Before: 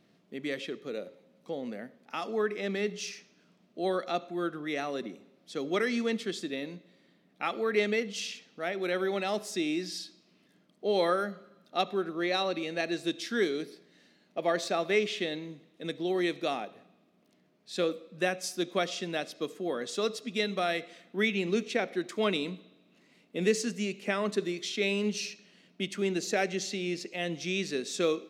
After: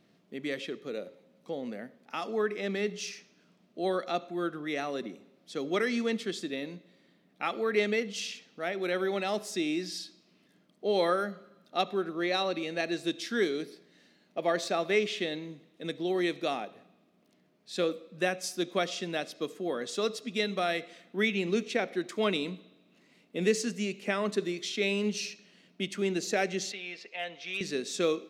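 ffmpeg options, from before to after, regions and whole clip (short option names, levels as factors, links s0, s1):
-filter_complex "[0:a]asettb=1/sr,asplit=3[s0][s1][s2];[s0]atrim=end=26.724[s3];[s1]atrim=start=26.72:end=27.61,asetpts=PTS-STARTPTS,afade=t=in:d=0.004:c=qsin,afade=t=out:st=0.886:d=0.004:c=qsin,acrossover=split=530 4100:gain=0.1 1 0.1[s4][s5][s6];[s4][s5][s6]amix=inputs=3:normalize=0,aecho=1:1:4.4:0.41,atrim=end_sample=39249,asoftclip=type=hard:threshold=0.0473[s7];[s2]atrim=start=27.606[s8];[s3][s7]acrossfade=d=0.004:c1=hsin:c2=qsin[s9];[s9][s8]acrossfade=d=0.004:c1=qsin:c2=hsin"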